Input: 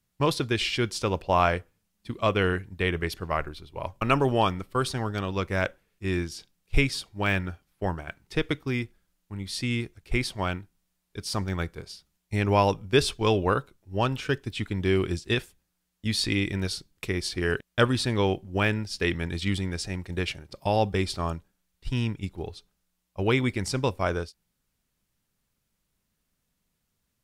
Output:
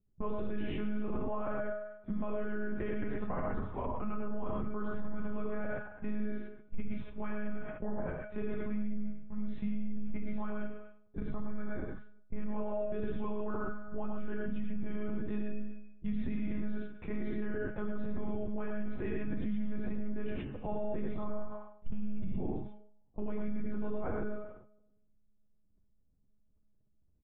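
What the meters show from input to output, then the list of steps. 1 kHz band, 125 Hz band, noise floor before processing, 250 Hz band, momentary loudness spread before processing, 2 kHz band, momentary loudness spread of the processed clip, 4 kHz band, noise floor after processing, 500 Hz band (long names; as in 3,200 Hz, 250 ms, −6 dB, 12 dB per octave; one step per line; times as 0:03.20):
−15.5 dB, −14.5 dB, −78 dBFS, −6.0 dB, 13 LU, −16.5 dB, 6 LU, below −25 dB, −68 dBFS, −11.0 dB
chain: downward compressor 2 to 1, threshold −25 dBFS, peak gain reduction 6.5 dB
low-shelf EQ 100 Hz +12 dB
tuned comb filter 120 Hz, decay 0.98 s, harmonics odd, mix 80%
far-end echo of a speakerphone 280 ms, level −23 dB
one-pitch LPC vocoder at 8 kHz 210 Hz
reverb whose tail is shaped and stops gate 140 ms rising, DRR −0.5 dB
flanger 1.9 Hz, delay 9.9 ms, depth 1.6 ms, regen −49%
treble cut that deepens with the level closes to 1,400 Hz, closed at −42 dBFS
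brickwall limiter −37.5 dBFS, peak gain reduction 15.5 dB
low-pass that shuts in the quiet parts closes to 510 Hz, open at −40 dBFS
high-shelf EQ 2,900 Hz −9 dB
level that may fall only so fast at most 81 dB per second
level +11.5 dB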